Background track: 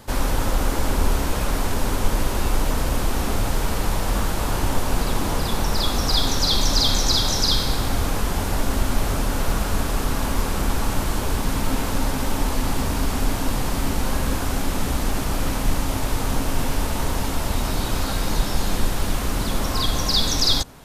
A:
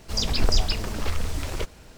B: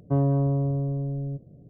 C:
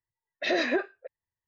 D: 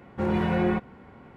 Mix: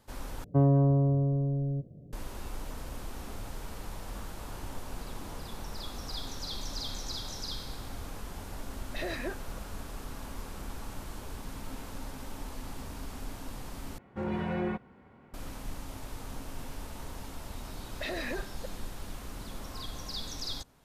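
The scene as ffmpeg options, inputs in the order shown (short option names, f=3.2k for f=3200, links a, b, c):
-filter_complex "[3:a]asplit=2[a][b];[0:a]volume=-18.5dB[c];[b]acompressor=threshold=-32dB:ratio=6:attack=3.2:release=140:knee=1:detection=peak[d];[c]asplit=3[e][f][g];[e]atrim=end=0.444[h];[2:a]atrim=end=1.69,asetpts=PTS-STARTPTS,volume=-0.5dB[i];[f]atrim=start=2.126:end=13.984[j];[4:a]atrim=end=1.36,asetpts=PTS-STARTPTS,volume=-8dB[k];[g]atrim=start=15.336[l];[a]atrim=end=1.47,asetpts=PTS-STARTPTS,volume=-10.5dB,afade=t=in:d=0.004:c=hsin,afade=t=out:st=1.466:d=0.004:c=hsin,adelay=8520[m];[d]atrim=end=1.47,asetpts=PTS-STARTPTS,volume=-1dB,afade=t=in:d=0.004:c=hsin,afade=t=out:st=1.466:d=0.004:c=hsin,adelay=17590[n];[h][i]acrossfade=d=0.004:c1=hsin:c2=hsin[o];[o][j]acrossfade=d=0.004:c1=hsin:c2=hsin[p];[p][k]acrossfade=d=0.004:c1=hsin:c2=hsin[q];[q][l]acrossfade=d=0.004:c1=hsin:c2=hsin[r];[r][m][n]amix=inputs=3:normalize=0"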